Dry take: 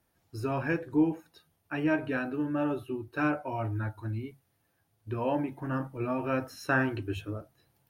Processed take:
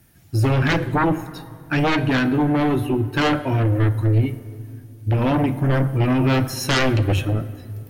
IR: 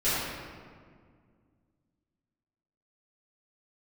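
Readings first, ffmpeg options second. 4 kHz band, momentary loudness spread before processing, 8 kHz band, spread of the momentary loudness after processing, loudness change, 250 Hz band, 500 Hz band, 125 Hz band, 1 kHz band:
+21.0 dB, 11 LU, n/a, 11 LU, +11.5 dB, +10.0 dB, +9.5 dB, +17.5 dB, +11.0 dB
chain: -filter_complex "[0:a]equalizer=f=125:t=o:w=1:g=4,equalizer=f=500:t=o:w=1:g=-8,equalizer=f=1k:t=o:w=1:g=-10,equalizer=f=4k:t=o:w=1:g=-4,aeval=exprs='0.15*sin(PI/2*5.01*val(0)/0.15)':c=same,asplit=2[a][b];[1:a]atrim=start_sample=2205,asetrate=33957,aresample=44100[c];[b][c]afir=irnorm=-1:irlink=0,volume=-28dB[d];[a][d]amix=inputs=2:normalize=0,volume=1.5dB"

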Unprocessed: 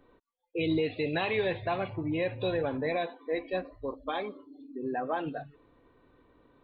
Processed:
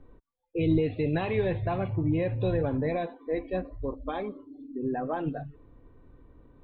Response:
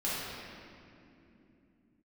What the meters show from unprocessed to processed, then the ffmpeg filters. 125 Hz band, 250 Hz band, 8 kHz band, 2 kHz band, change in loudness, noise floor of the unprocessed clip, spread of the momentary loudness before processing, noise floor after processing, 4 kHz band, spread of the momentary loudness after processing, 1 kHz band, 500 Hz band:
+9.5 dB, +4.5 dB, n/a, -4.0 dB, +2.5 dB, -71 dBFS, 10 LU, -67 dBFS, -7.5 dB, 11 LU, -0.5 dB, +1.5 dB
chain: -af "aemphasis=mode=reproduction:type=riaa,volume=-1.5dB"

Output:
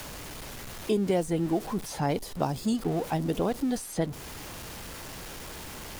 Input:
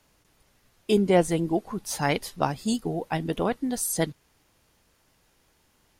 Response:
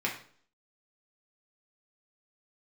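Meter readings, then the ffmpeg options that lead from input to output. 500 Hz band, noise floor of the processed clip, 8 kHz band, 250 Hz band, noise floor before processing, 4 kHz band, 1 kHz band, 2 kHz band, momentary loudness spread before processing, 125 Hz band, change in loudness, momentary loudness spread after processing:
-3.5 dB, -42 dBFS, -6.5 dB, -1.5 dB, -66 dBFS, -3.0 dB, -3.5 dB, -6.0 dB, 8 LU, -1.0 dB, -5.0 dB, 13 LU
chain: -filter_complex "[0:a]aeval=exprs='val(0)+0.5*0.02*sgn(val(0))':c=same,acrossover=split=1000|3700[a][b][c];[a]acompressor=threshold=-23dB:ratio=4[d];[b]acompressor=threshold=-45dB:ratio=4[e];[c]acompressor=threshold=-43dB:ratio=4[f];[d][e][f]amix=inputs=3:normalize=0"

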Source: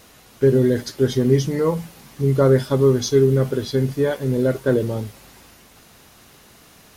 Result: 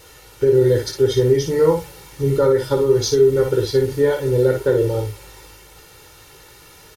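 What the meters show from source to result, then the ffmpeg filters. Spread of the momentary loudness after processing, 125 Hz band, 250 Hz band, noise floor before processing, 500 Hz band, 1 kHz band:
6 LU, -2.0 dB, -2.5 dB, -50 dBFS, +3.5 dB, +2.5 dB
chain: -af "aecho=1:1:2.2:0.89,alimiter=limit=-7dB:level=0:latency=1:release=169,aecho=1:1:18|57:0.447|0.473"

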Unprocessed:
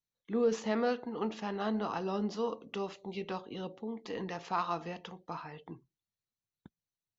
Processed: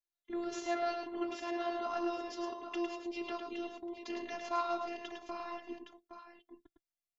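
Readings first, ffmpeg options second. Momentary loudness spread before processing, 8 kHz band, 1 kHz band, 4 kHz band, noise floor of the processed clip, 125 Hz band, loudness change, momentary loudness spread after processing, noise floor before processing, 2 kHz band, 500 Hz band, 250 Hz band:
12 LU, n/a, -1.0 dB, -0.5 dB, under -85 dBFS, under -20 dB, -3.0 dB, 13 LU, under -85 dBFS, -1.0 dB, -4.0 dB, -3.5 dB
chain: -filter_complex "[0:a]agate=range=-10dB:threshold=-48dB:ratio=16:detection=peak,asplit=2[a][b];[b]acompressor=threshold=-47dB:ratio=6,volume=-1.5dB[c];[a][c]amix=inputs=2:normalize=0,afftfilt=real='hypot(re,im)*cos(PI*b)':imag='0':win_size=512:overlap=0.75,aecho=1:1:106|816:0.531|0.335,volume=1dB"

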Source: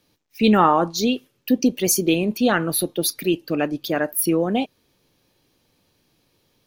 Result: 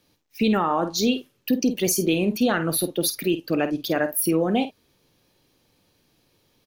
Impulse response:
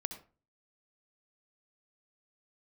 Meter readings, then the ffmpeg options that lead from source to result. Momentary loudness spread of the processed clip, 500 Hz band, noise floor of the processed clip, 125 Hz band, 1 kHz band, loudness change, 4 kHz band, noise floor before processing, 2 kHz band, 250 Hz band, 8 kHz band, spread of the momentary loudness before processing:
4 LU, -2.0 dB, -67 dBFS, -2.0 dB, -5.5 dB, -2.5 dB, -1.5 dB, -67 dBFS, -2.5 dB, -2.0 dB, -2.5 dB, 8 LU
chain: -filter_complex "[0:a]asplit=2[a][b];[b]adelay=50,volume=-11.5dB[c];[a][c]amix=inputs=2:normalize=0,alimiter=limit=-12dB:level=0:latency=1:release=103"

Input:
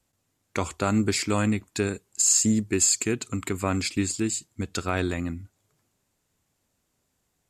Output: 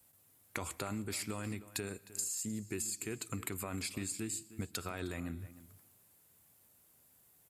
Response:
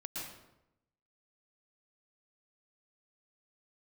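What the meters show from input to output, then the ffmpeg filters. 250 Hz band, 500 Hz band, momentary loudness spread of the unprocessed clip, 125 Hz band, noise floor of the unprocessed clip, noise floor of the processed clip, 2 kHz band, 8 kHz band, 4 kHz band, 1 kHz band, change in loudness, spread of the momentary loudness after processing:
-15.5 dB, -15.0 dB, 12 LU, -13.5 dB, -75 dBFS, -67 dBFS, -12.0 dB, -15.0 dB, -13.0 dB, -14.5 dB, -14.5 dB, 6 LU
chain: -filter_complex "[0:a]highpass=76,equalizer=f=250:t=o:w=1.5:g=-2.5,alimiter=limit=-18dB:level=0:latency=1:release=21,aexciter=amount=6.6:drive=2.7:freq=9.2k,flanger=delay=1.1:depth=1.3:regen=-87:speed=1.7:shape=triangular,acompressor=threshold=-43dB:ratio=10,asplit=2[a][b];[b]adelay=309,volume=-16dB,highshelf=f=4k:g=-6.95[c];[a][c]amix=inputs=2:normalize=0,asplit=2[d][e];[1:a]atrim=start_sample=2205[f];[e][f]afir=irnorm=-1:irlink=0,volume=-20.5dB[g];[d][g]amix=inputs=2:normalize=0,volume=6.5dB"

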